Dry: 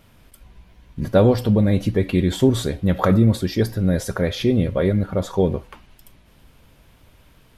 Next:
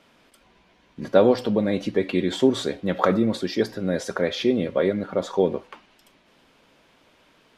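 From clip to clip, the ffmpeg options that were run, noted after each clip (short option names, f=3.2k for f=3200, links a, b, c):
-filter_complex "[0:a]acrossover=split=210 7500:gain=0.0708 1 0.141[a][b][c];[a][b][c]amix=inputs=3:normalize=0"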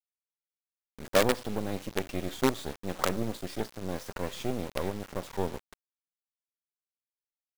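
-af "acrusher=bits=3:dc=4:mix=0:aa=0.000001,volume=-8dB"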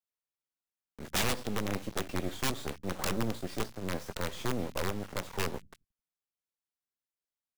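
-filter_complex "[0:a]acrossover=split=200|2000[a][b][c];[a]aecho=1:1:88|176|264:0.158|0.0491|0.0152[d];[b]aeval=exprs='(mod(17.8*val(0)+1,2)-1)/17.8':c=same[e];[c]flanger=delay=20:depth=2.1:speed=0.47[f];[d][e][f]amix=inputs=3:normalize=0"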